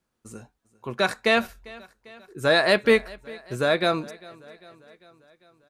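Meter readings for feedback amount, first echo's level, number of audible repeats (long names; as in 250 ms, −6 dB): 60%, −22.0 dB, 3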